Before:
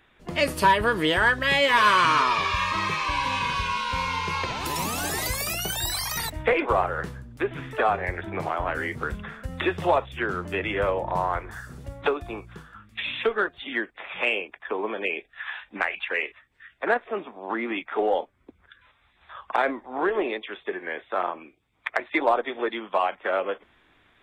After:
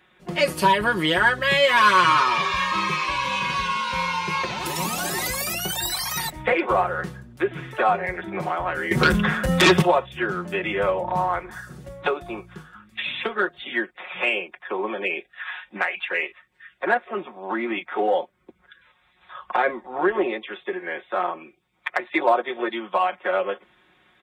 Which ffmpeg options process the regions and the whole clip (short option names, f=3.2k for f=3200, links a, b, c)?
-filter_complex "[0:a]asettb=1/sr,asplit=3[a][b][c];[a]atrim=end=8.914[d];[b]atrim=start=8.91:end=9.82,asetpts=PTS-STARTPTS,afade=t=in:d=0.004:c=qsin,afade=t=out:st=0.906:d=0.004:c=qsin,highshelf=f=10k:g=4.5,aeval=exprs='0.251*sin(PI/2*3.55*val(0)/0.251)':c=same[e];[c]atrim=start=9.816[f];[d][e]acrossfade=d=0.004:c1=hsin:c2=qsin[g];[g][f]acrossfade=d=0.004:c1=qsin:c2=hsin,asettb=1/sr,asplit=3[h][i][j];[h]atrim=end=19.434[k];[i]atrim=start=19.43:end=20.53,asetpts=PTS-STARTPTS,afade=t=in:d=0.004:c=qsin,afade=t=out:st=1.096:d=0.004:c=qsin,lowshelf=f=110:g=8,acrossover=split=3900[l][m];[m]acompressor=threshold=-55dB:ratio=4:attack=1:release=60[n];[l][n]amix=inputs=2:normalize=0[o];[j]atrim=start=20.526[p];[k][o]acrossfade=d=0.004:c1=hsin:c2=qsin[q];[q][p]acrossfade=d=0.004:c1=qsin:c2=hsin,highpass=71,aecho=1:1:5.5:0.76"